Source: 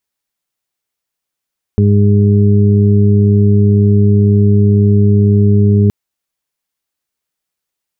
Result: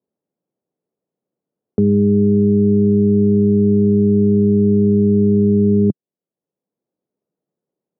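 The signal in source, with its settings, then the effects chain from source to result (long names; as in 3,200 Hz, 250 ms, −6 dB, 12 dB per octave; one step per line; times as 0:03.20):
steady harmonic partials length 4.12 s, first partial 102 Hz, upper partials −4/−18/−9.5 dB, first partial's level −7.5 dB
Chebyshev band-pass filter 160–490 Hz, order 2
multiband upward and downward compressor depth 40%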